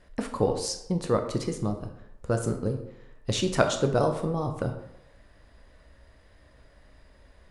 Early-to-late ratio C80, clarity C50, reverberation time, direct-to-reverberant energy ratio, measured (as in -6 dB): 11.0 dB, 8.0 dB, 0.80 s, 5.0 dB